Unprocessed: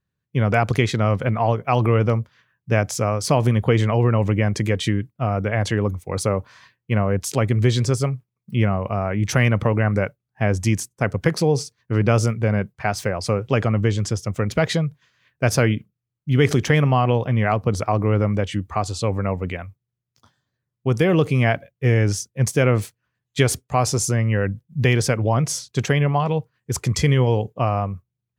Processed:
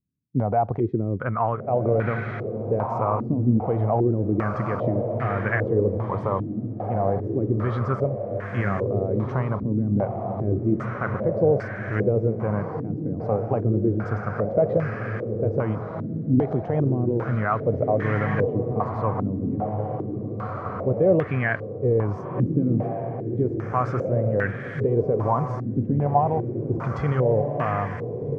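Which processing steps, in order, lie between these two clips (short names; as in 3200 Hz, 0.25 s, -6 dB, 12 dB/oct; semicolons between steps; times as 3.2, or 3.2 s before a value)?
limiter -9 dBFS, peak gain reduction 6 dB; diffused feedback echo 1.517 s, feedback 48%, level -4.5 dB; stepped low-pass 2.5 Hz 270–1700 Hz; gain -6 dB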